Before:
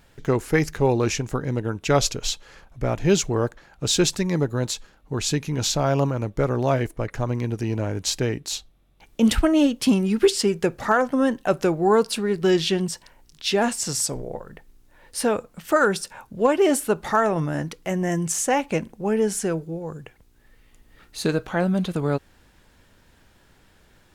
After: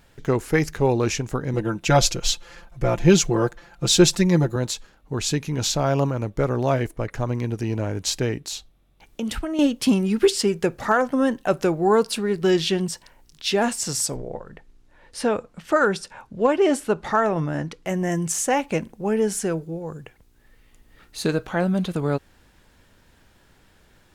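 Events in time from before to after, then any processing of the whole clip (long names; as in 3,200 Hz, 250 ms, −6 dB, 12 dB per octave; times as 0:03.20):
0:01.53–0:04.56: comb filter 5.8 ms, depth 99%
0:08.43–0:09.59: downward compressor 3 to 1, threshold −27 dBFS
0:14.16–0:17.86: high-frequency loss of the air 57 metres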